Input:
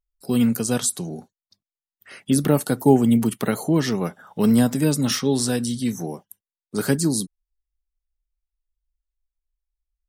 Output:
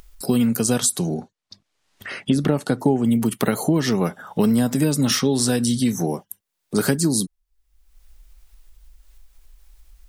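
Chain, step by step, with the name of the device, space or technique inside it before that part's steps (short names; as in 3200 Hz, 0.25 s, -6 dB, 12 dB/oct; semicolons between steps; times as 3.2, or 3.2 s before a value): 1.14–3.05 air absorption 70 m; upward and downward compression (upward compressor, threshold -34 dBFS; compressor 6:1, threshold -23 dBFS, peak gain reduction 13 dB); gain +7.5 dB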